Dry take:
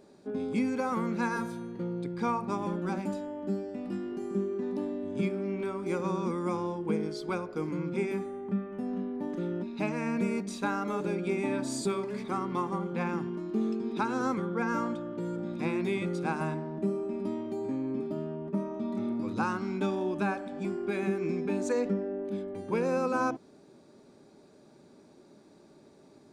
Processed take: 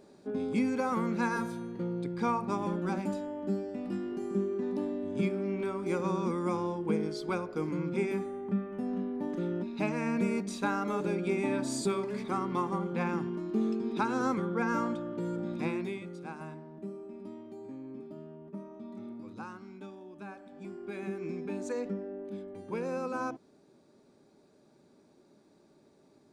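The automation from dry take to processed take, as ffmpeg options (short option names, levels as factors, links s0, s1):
-af "volume=3.98,afade=t=out:st=15.56:d=0.47:silence=0.281838,afade=t=out:st=19.06:d=1.02:silence=0.446684,afade=t=in:st=20.08:d=1.21:silence=0.251189"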